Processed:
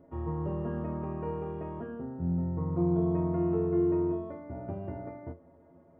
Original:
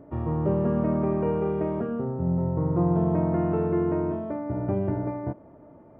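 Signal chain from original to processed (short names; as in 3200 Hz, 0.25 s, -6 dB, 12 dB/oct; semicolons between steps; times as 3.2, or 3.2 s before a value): metallic resonator 82 Hz, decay 0.23 s, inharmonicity 0.008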